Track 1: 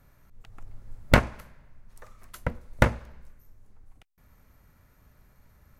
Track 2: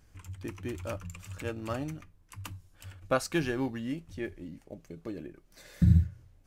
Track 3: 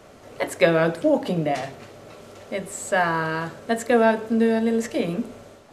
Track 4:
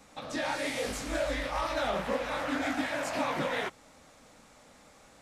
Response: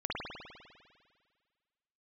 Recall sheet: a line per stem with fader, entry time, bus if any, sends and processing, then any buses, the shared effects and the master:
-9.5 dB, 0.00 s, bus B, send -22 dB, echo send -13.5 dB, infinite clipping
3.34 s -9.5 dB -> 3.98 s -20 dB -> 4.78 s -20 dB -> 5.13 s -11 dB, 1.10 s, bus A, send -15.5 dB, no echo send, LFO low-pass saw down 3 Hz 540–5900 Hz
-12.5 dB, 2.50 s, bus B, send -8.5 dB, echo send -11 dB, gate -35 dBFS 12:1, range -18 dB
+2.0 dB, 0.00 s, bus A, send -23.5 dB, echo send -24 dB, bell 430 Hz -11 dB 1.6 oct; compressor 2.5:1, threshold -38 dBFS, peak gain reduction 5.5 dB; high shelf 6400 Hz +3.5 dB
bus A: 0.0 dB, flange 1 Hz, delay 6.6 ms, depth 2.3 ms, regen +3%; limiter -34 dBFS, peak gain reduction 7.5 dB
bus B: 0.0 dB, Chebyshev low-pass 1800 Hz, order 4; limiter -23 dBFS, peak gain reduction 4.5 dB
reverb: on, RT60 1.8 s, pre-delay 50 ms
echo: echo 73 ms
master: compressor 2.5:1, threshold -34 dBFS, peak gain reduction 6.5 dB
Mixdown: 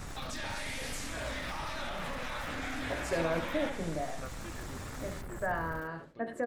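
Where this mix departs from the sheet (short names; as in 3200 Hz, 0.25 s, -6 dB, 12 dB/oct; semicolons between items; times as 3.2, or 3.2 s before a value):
stem 3: send off; stem 4 +2.0 dB -> +12.0 dB; master: missing compressor 2.5:1, threshold -34 dBFS, peak gain reduction 6.5 dB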